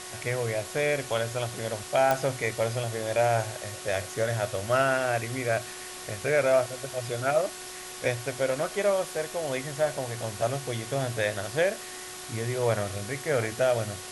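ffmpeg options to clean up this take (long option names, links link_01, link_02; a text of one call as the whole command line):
ffmpeg -i in.wav -af "adeclick=threshold=4,bandreject=frequency=367:width_type=h:width=4,bandreject=frequency=734:width_type=h:width=4,bandreject=frequency=1101:width_type=h:width=4,bandreject=frequency=1468:width_type=h:width=4,bandreject=frequency=1835:width_type=h:width=4,afwtdn=0.011" out.wav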